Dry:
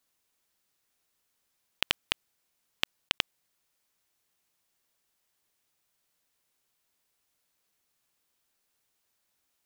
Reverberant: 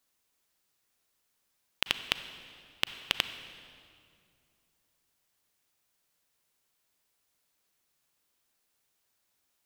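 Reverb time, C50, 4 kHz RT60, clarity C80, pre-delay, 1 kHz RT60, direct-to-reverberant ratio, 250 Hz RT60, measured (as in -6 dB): 2.4 s, 11.0 dB, 1.8 s, 12.0 dB, 34 ms, 2.2 s, 10.5 dB, 2.9 s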